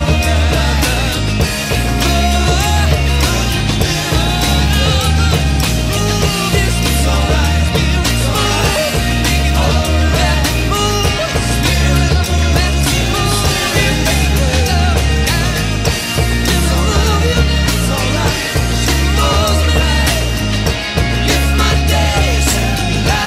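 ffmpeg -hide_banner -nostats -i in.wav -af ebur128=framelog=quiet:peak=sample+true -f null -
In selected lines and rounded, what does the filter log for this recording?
Integrated loudness:
  I:         -13.3 LUFS
  Threshold: -23.3 LUFS
Loudness range:
  LRA:         0.7 LU
  Threshold: -33.2 LUFS
  LRA low:   -13.5 LUFS
  LRA high:  -12.9 LUFS
Sample peak:
  Peak:       -1.3 dBFS
True peak:
  Peak:       -0.7 dBFS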